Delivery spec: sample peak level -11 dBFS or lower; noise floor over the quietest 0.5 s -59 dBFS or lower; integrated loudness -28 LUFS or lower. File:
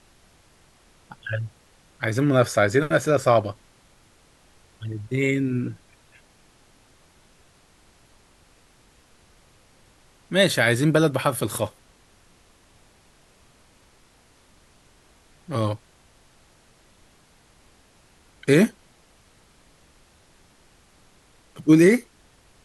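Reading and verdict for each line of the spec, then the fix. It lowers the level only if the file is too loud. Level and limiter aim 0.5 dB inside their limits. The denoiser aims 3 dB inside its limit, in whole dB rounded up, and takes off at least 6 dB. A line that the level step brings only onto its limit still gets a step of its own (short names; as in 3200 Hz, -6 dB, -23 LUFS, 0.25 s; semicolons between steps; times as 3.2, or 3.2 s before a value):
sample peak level -5.0 dBFS: fail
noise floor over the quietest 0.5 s -57 dBFS: fail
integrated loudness -22.0 LUFS: fail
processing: gain -6.5 dB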